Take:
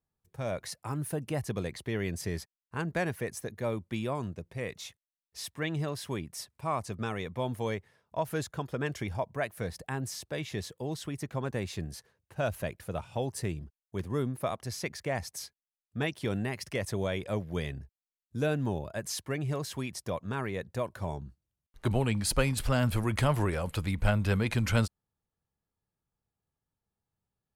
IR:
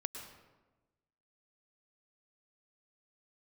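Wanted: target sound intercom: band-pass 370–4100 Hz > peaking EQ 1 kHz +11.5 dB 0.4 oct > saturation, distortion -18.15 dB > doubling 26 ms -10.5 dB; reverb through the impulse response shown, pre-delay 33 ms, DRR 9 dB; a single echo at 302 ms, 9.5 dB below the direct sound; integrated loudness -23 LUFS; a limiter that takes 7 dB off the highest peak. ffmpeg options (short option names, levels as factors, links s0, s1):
-filter_complex "[0:a]alimiter=limit=0.1:level=0:latency=1,aecho=1:1:302:0.335,asplit=2[s0][s1];[1:a]atrim=start_sample=2205,adelay=33[s2];[s1][s2]afir=irnorm=-1:irlink=0,volume=0.376[s3];[s0][s3]amix=inputs=2:normalize=0,highpass=370,lowpass=4100,equalizer=f=1000:t=o:w=0.4:g=11.5,asoftclip=threshold=0.0944,asplit=2[s4][s5];[s5]adelay=26,volume=0.299[s6];[s4][s6]amix=inputs=2:normalize=0,volume=4.22"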